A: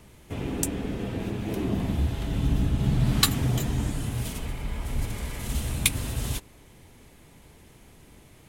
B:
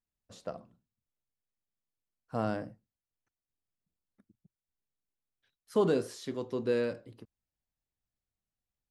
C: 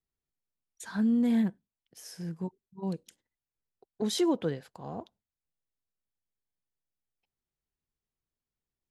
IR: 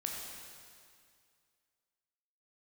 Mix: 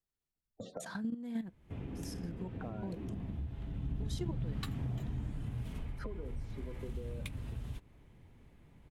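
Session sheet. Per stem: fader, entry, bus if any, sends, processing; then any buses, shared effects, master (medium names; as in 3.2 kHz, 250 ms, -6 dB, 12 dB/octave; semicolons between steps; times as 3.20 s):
3.72 s -12.5 dB -> 3.96 s -5 dB -> 5.80 s -5 dB -> 6.07 s -12 dB, 1.40 s, no send, tone controls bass +7 dB, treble -13 dB
-7.5 dB, 0.30 s, no send, gate with hold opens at -55 dBFS; spectral gate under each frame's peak -15 dB strong; three bands compressed up and down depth 100%
+2.5 dB, 0.00 s, no send, level held to a coarse grid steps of 12 dB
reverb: none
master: compression 3:1, threshold -39 dBFS, peak gain reduction 17 dB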